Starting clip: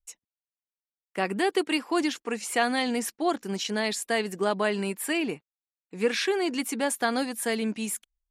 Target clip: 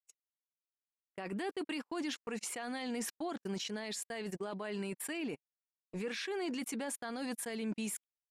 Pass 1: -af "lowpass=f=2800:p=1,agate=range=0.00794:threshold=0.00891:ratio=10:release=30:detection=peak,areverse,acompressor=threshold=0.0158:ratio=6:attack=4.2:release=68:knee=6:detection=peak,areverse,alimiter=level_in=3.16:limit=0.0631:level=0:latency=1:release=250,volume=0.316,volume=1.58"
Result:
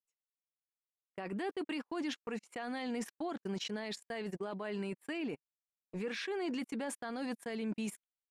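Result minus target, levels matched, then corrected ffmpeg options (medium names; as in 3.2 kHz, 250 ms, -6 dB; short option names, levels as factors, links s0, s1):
8 kHz band -8.5 dB
-af "lowpass=f=8200:p=1,agate=range=0.00794:threshold=0.00891:ratio=10:release=30:detection=peak,areverse,acompressor=threshold=0.0158:ratio=6:attack=4.2:release=68:knee=6:detection=peak,areverse,alimiter=level_in=3.16:limit=0.0631:level=0:latency=1:release=250,volume=0.316,volume=1.58"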